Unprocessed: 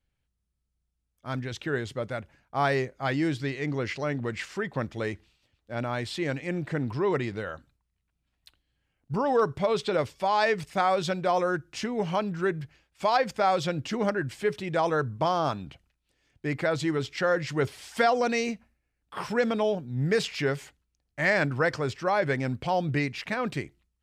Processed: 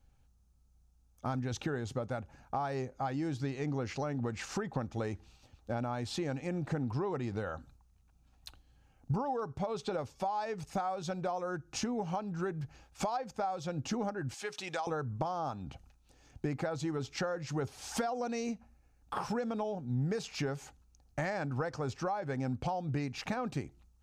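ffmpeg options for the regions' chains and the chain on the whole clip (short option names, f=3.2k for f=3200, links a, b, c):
-filter_complex "[0:a]asettb=1/sr,asplit=3[a][b][c];[a]atrim=end=14.344[d];[b]atrim=start=14.34:end=14.87,asetpts=PTS-STARTPTS,afade=t=in:d=0.004:c=qsin,afade=t=out:st=0.526:d=0.004:c=qsin,acompressor=mode=upward:threshold=-38dB:ratio=2.5:attack=3.2:release=140:knee=2.83:detection=peak,bandpass=f=4.8k:t=q:w=0.5[e];[c]atrim=start=14.866[f];[d][e]acrossfade=d=0.004:c1=hsin:c2=qsin[g];[g][f]acrossfade=d=0.004:c1=qsin:c2=hsin,equalizer=f=250:t=o:w=0.33:g=5,equalizer=f=500:t=o:w=0.33:g=3,equalizer=f=800:t=o:w=0.33:g=11,equalizer=f=1.25k:t=o:w=0.33:g=4,equalizer=f=2k:t=o:w=0.33:g=-7,equalizer=f=3.15k:t=o:w=0.33:g=-4,equalizer=f=6.3k:t=o:w=0.33:g=7,acompressor=threshold=-41dB:ratio=6,lowshelf=f=140:g=9.5,volume=5.5dB"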